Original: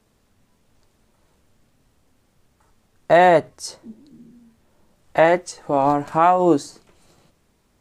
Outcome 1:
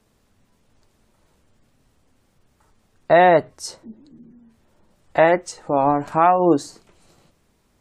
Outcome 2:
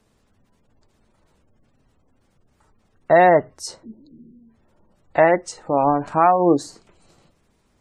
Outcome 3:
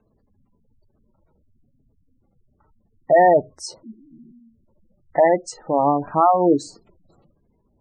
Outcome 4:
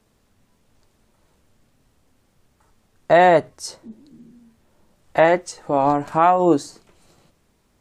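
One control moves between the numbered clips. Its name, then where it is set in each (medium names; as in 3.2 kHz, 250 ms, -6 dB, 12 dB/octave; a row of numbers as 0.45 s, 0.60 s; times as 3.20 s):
spectral gate, under each frame's peak: -40 dB, -30 dB, -15 dB, -55 dB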